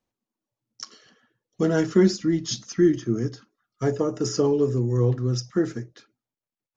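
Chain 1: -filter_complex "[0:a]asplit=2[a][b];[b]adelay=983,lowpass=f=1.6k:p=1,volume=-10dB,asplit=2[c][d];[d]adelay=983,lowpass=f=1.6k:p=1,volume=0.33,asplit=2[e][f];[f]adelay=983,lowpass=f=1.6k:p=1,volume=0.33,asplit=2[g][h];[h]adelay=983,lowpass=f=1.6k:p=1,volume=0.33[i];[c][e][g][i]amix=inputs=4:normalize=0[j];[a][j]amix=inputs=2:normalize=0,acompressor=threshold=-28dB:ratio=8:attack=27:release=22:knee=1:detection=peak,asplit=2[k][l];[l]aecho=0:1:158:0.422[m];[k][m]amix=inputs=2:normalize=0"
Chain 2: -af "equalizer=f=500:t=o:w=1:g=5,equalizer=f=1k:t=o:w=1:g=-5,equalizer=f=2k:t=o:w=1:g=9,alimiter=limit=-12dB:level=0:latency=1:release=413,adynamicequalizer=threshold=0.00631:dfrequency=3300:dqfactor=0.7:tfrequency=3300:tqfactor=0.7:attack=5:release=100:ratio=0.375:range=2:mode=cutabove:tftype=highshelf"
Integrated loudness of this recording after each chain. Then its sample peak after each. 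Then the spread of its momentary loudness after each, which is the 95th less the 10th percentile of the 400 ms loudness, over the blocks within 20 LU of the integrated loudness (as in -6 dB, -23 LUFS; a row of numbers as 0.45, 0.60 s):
-28.0, -24.5 LUFS; -12.5, -12.0 dBFS; 10, 16 LU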